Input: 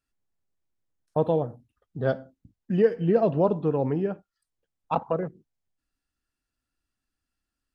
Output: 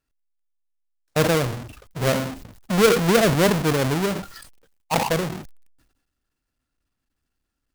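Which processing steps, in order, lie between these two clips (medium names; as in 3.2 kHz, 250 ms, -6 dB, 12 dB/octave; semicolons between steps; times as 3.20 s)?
square wave that keeps the level; decay stretcher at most 63 dB/s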